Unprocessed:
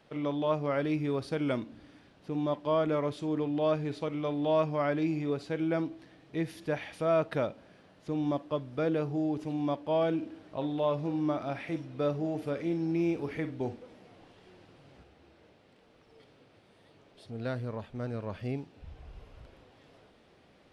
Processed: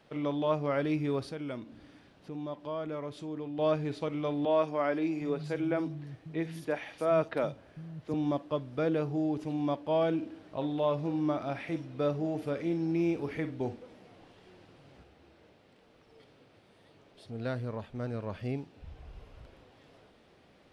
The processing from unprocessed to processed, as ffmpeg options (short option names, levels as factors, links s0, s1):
-filter_complex "[0:a]asettb=1/sr,asplit=3[s0][s1][s2];[s0]atrim=end=1.304[s3];[s1]atrim=start=1.3:end=3.59,asetpts=PTS-STARTPTS,afade=t=in:d=0.004:c=qsin,afade=t=out:st=2.286:d=0.004:c=qsin,acompressor=threshold=0.00398:ratio=1.5:attack=3.2:release=140:knee=1:detection=peak[s4];[s2]atrim=start=3.586[s5];[s3][s4]acrossfade=d=0.004:c1=hsin:c2=qsin[s6];[s6][s5]acrossfade=d=0.004:c1=qsin:c2=hsin,asettb=1/sr,asplit=3[s7][s8][s9];[s7]atrim=end=4.454[s10];[s8]atrim=start=4.45:end=8.14,asetpts=PTS-STARTPTS,afade=t=in:d=0.004:c=qsin,afade=t=out:st=3.686:d=0.004:c=qsin,acrossover=split=180|4100[s11][s12][s13];[s13]adelay=50[s14];[s11]adelay=760[s15];[s15][s12][s14]amix=inputs=3:normalize=0,atrim=end_sample=162729[s16];[s9]atrim=start=8.136[s17];[s10][s16]acrossfade=d=0.004:c1=hsin:c2=qsin[s18];[s18][s17]acrossfade=d=0.004:c1=qsin:c2=hsin"